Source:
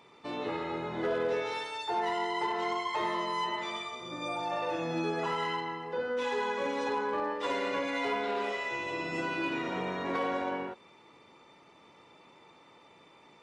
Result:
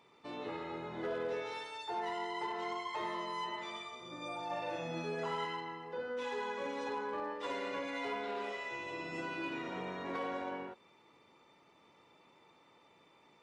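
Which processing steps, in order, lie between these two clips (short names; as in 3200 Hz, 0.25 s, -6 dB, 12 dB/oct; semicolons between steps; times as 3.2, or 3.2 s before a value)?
4.46–5.45 doubler 41 ms -4 dB; gain -7 dB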